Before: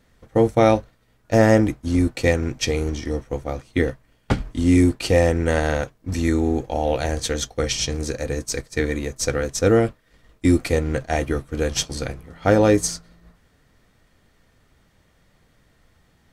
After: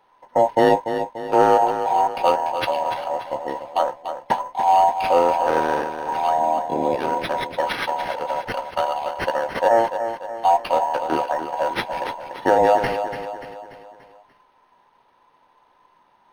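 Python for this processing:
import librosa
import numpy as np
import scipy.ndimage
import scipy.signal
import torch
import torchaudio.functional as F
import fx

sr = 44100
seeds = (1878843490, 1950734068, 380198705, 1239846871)

p1 = fx.band_invert(x, sr, width_hz=1000)
p2 = fx.low_shelf(p1, sr, hz=72.0, db=-10.5)
p3 = p2 + fx.echo_feedback(p2, sr, ms=291, feedback_pct=48, wet_db=-9, dry=0)
y = np.interp(np.arange(len(p3)), np.arange(len(p3))[::6], p3[::6])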